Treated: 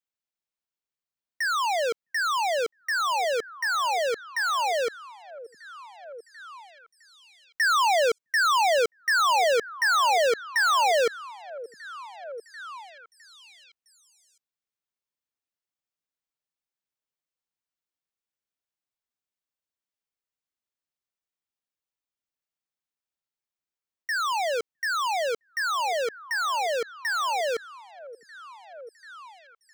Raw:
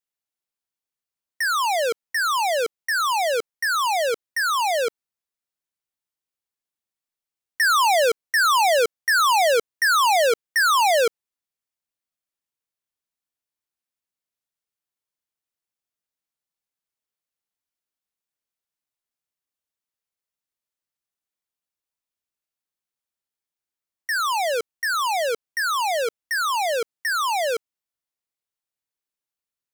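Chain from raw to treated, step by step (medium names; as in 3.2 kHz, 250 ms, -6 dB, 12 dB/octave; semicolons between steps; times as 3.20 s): peaking EQ 12 kHz -11 dB 0.6 oct; on a send: repeats whose band climbs or falls 660 ms, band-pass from 180 Hz, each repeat 1.4 oct, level -11 dB; on the sum: trim -3.5 dB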